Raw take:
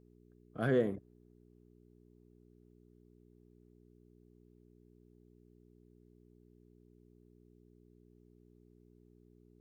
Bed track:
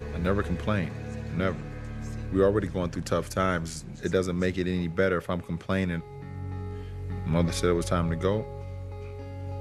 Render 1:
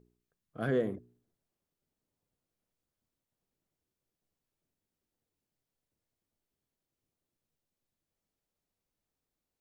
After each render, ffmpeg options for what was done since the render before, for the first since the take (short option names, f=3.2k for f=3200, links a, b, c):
-af "bandreject=f=60:t=h:w=4,bandreject=f=120:t=h:w=4,bandreject=f=180:t=h:w=4,bandreject=f=240:t=h:w=4,bandreject=f=300:t=h:w=4,bandreject=f=360:t=h:w=4,bandreject=f=420:t=h:w=4"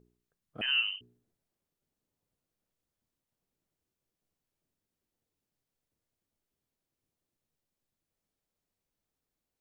-filter_complex "[0:a]asettb=1/sr,asplit=3[a][b][c];[a]atrim=end=0.614[d];[b]atrim=start=0.61:end=1.01,asetpts=PTS-STARTPTS,afade=t=in:d=0.004:c=qsin,afade=t=out:st=0.396:d=0.004:c=qsin,lowpass=f=2.7k:t=q:w=0.5098,lowpass=f=2.7k:t=q:w=0.6013,lowpass=f=2.7k:t=q:w=0.9,lowpass=f=2.7k:t=q:w=2.563,afreqshift=-3200[e];[c]atrim=start=1.006[f];[d][e]acrossfade=d=0.004:c1=hsin:c2=qsin[g];[g][f]acrossfade=d=0.004:c1=qsin:c2=hsin"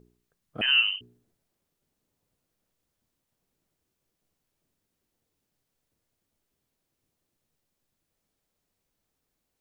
-af "volume=7dB"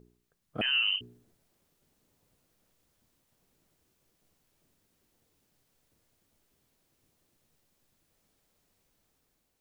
-af "alimiter=limit=-22.5dB:level=0:latency=1:release=61,dynaudnorm=f=400:g=5:m=7dB"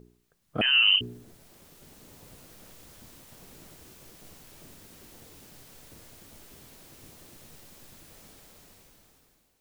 -filter_complex "[0:a]asplit=2[a][b];[b]alimiter=level_in=4.5dB:limit=-24dB:level=0:latency=1:release=24,volume=-4.5dB,volume=-0.5dB[c];[a][c]amix=inputs=2:normalize=0,dynaudnorm=f=360:g=7:m=16.5dB"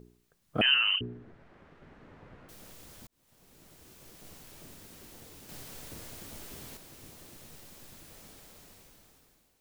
-filter_complex "[0:a]asettb=1/sr,asplit=3[a][b][c];[a]atrim=end=0.744[d];[b]atrim=start=0.74:end=2.49,asetpts=PTS-STARTPTS,afade=t=in:d=0.004:c=qsin,afade=t=out:st=1.746:d=0.004:c=qsin,lowpass=f=1.7k:t=q:w=1.5[e];[c]atrim=start=2.486[f];[d][e]acrossfade=d=0.004:c1=hsin:c2=qsin[g];[g][f]acrossfade=d=0.004:c1=qsin:c2=hsin,asplit=4[h][i][j][k];[h]atrim=end=3.07,asetpts=PTS-STARTPTS,afade=t=out:st=3.066:d=0.004:c=hsin[l];[i]atrim=start=3.07:end=5.492,asetpts=PTS-STARTPTS,afade=t=in:d=1.27[m];[j]atrim=start=5.488:end=6.772,asetpts=PTS-STARTPTS,volume=5.5dB[n];[k]atrim=start=6.768[o];[l][m]concat=n=2:v=0:a=1[p];[p][n]acrossfade=d=0.004:c1=hsin:c2=hsin[q];[q][o]acrossfade=d=0.004:c1=hsin:c2=hsin"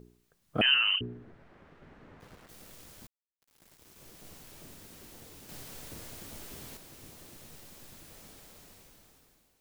-filter_complex "[0:a]asettb=1/sr,asplit=3[a][b][c];[a]atrim=end=2.204[d];[b]atrim=start=2.2:end=3.96,asetpts=PTS-STARTPTS,afade=t=in:d=0.004:c=qsin,afade=t=out:st=1.756:d=0.004:c=qsin,aeval=exprs='val(0)*gte(abs(val(0)),0.00266)':c=same[e];[c]atrim=start=3.956[f];[d][e]acrossfade=d=0.004:c1=hsin:c2=qsin[g];[g][f]acrossfade=d=0.004:c1=qsin:c2=hsin"